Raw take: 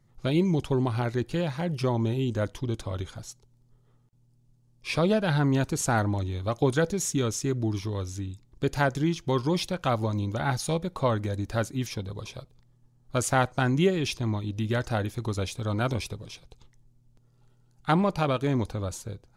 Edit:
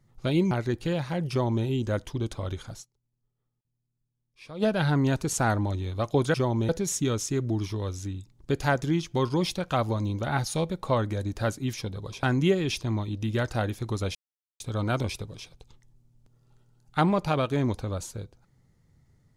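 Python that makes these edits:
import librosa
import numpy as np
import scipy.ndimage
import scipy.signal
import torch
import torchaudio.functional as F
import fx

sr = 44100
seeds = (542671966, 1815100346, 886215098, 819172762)

y = fx.edit(x, sr, fx.cut(start_s=0.51, length_s=0.48),
    fx.duplicate(start_s=1.78, length_s=0.35, to_s=6.82),
    fx.fade_down_up(start_s=3.28, length_s=1.83, db=-18.0, fade_s=0.25, curve='exp'),
    fx.cut(start_s=12.36, length_s=1.23),
    fx.insert_silence(at_s=15.51, length_s=0.45), tone=tone)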